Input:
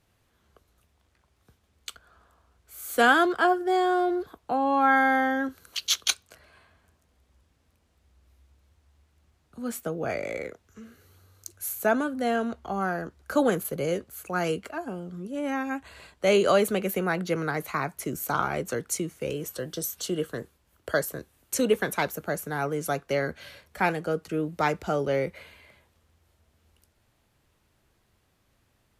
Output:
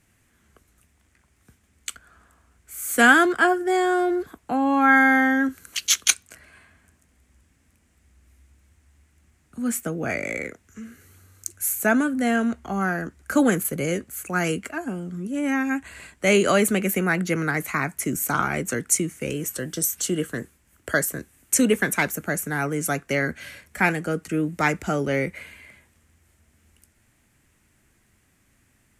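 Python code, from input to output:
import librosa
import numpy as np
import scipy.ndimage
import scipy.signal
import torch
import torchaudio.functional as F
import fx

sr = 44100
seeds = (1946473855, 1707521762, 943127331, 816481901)

y = fx.graphic_eq_10(x, sr, hz=(250, 500, 1000, 2000, 4000, 8000), db=(5, -5, -4, 7, -7, 9))
y = y * 10.0 ** (4.0 / 20.0)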